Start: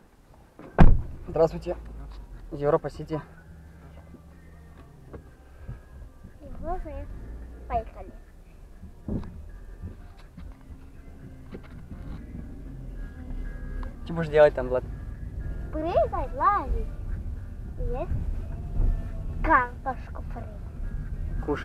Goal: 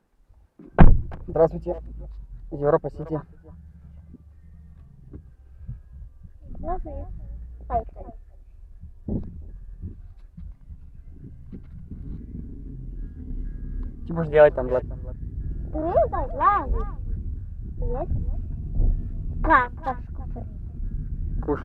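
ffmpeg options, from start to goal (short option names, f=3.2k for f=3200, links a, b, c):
-filter_complex "[0:a]afwtdn=0.02,asplit=2[a][b];[b]adelay=330,highpass=300,lowpass=3.4k,asoftclip=type=hard:threshold=-14dB,volume=-22dB[c];[a][c]amix=inputs=2:normalize=0,volume=3dB"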